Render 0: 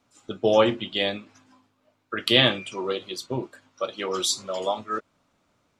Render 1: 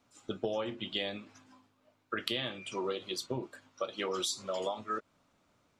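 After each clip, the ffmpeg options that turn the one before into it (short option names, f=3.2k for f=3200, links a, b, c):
-af "acompressor=threshold=-28dB:ratio=16,volume=-2.5dB"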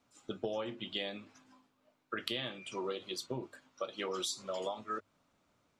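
-af "bandreject=f=50:t=h:w=6,bandreject=f=100:t=h:w=6,volume=-3dB"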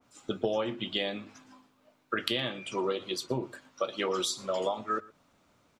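-af "aecho=1:1:117:0.0794,adynamicequalizer=threshold=0.00282:dfrequency=2300:dqfactor=0.7:tfrequency=2300:tqfactor=0.7:attack=5:release=100:ratio=0.375:range=2:mode=cutabove:tftype=highshelf,volume=7.5dB"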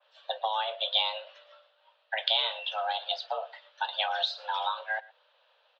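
-af "aexciter=amount=2.8:drive=9:freq=2.6k,highpass=f=160:t=q:w=0.5412,highpass=f=160:t=q:w=1.307,lowpass=f=3.2k:t=q:w=0.5176,lowpass=f=3.2k:t=q:w=0.7071,lowpass=f=3.2k:t=q:w=1.932,afreqshift=330,volume=-1dB"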